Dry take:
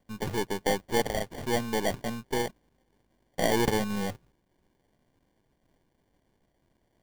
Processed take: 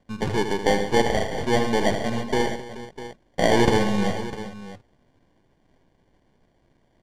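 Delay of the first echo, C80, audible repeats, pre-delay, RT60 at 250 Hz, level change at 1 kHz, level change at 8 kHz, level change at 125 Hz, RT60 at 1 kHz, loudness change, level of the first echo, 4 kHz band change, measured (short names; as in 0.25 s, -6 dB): 78 ms, none, 5, none, none, +7.5 dB, +2.0 dB, +8.0 dB, none, +6.5 dB, -8.5 dB, +6.0 dB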